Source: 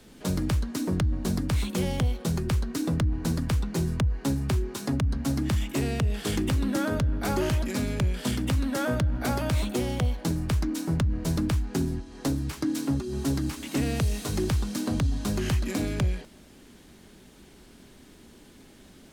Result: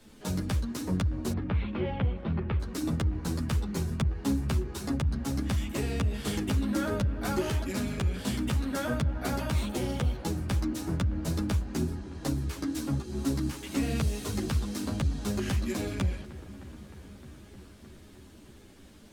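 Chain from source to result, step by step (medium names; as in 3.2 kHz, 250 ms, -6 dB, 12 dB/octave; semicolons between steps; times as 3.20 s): 1.32–2.60 s: inverse Chebyshev low-pass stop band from 6.9 kHz, stop band 50 dB; feedback echo behind a low-pass 308 ms, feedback 81%, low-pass 2 kHz, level -17 dB; three-phase chorus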